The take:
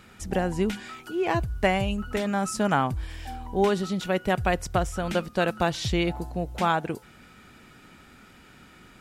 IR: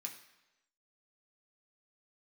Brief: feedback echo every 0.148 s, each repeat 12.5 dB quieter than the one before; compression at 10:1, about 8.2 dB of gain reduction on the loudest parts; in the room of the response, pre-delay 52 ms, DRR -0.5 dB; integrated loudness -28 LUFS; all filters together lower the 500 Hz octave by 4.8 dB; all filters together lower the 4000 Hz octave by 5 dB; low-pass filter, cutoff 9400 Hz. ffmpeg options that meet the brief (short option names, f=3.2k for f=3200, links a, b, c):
-filter_complex "[0:a]lowpass=9.4k,equalizer=f=500:t=o:g=-6.5,equalizer=f=4k:t=o:g=-7,acompressor=threshold=-28dB:ratio=10,aecho=1:1:148|296|444:0.237|0.0569|0.0137,asplit=2[a][b];[1:a]atrim=start_sample=2205,adelay=52[c];[b][c]afir=irnorm=-1:irlink=0,volume=3.5dB[d];[a][d]amix=inputs=2:normalize=0,volume=4dB"